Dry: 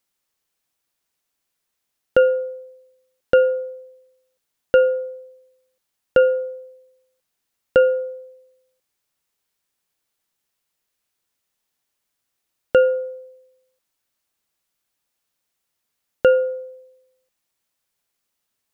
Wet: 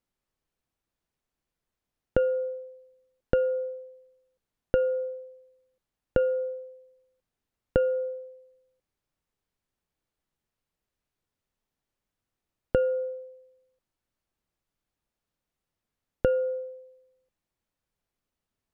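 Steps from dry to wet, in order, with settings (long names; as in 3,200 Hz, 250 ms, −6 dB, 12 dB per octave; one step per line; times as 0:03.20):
downward compressor 3 to 1, threshold −21 dBFS, peak gain reduction 8.5 dB
spectral tilt −3 dB per octave
level −5 dB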